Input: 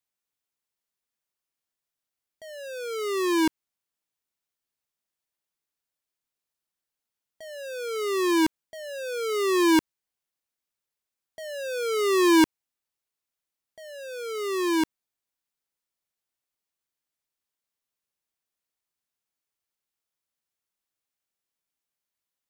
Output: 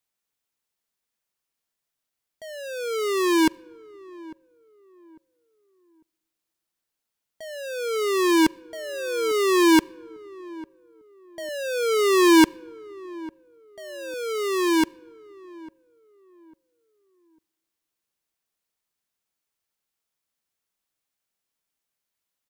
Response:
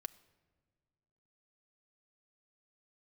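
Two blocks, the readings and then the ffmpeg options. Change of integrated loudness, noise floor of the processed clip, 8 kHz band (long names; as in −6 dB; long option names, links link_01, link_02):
+3.0 dB, −84 dBFS, +3.5 dB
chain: -filter_complex "[0:a]asplit=2[link_01][link_02];[link_02]adelay=849,lowpass=frequency=1000:poles=1,volume=-20dB,asplit=2[link_03][link_04];[link_04]adelay=849,lowpass=frequency=1000:poles=1,volume=0.32,asplit=2[link_05][link_06];[link_06]adelay=849,lowpass=frequency=1000:poles=1,volume=0.32[link_07];[link_01][link_03][link_05][link_07]amix=inputs=4:normalize=0,asplit=2[link_08][link_09];[1:a]atrim=start_sample=2205[link_10];[link_09][link_10]afir=irnorm=-1:irlink=0,volume=-1.5dB[link_11];[link_08][link_11]amix=inputs=2:normalize=0"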